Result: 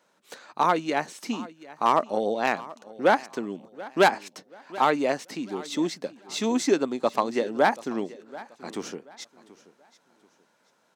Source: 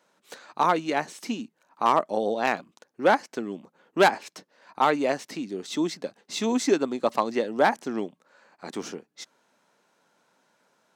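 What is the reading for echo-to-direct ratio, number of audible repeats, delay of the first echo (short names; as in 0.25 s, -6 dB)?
-18.5 dB, 2, 0.732 s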